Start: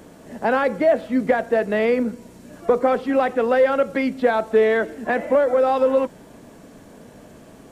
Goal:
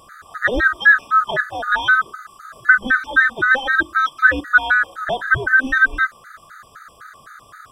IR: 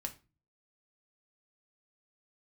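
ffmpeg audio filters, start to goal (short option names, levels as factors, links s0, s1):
-af "afftfilt=real='real(if(lt(b,960),b+48*(1-2*mod(floor(b/48),2)),b),0)':imag='imag(if(lt(b,960),b+48*(1-2*mod(floor(b/48),2)),b),0)':win_size=2048:overlap=0.75,afftfilt=real='re*gt(sin(2*PI*3.9*pts/sr)*(1-2*mod(floor(b*sr/1024/1200),2)),0)':imag='im*gt(sin(2*PI*3.9*pts/sr)*(1-2*mod(floor(b*sr/1024/1200),2)),0)':win_size=1024:overlap=0.75,volume=1.88"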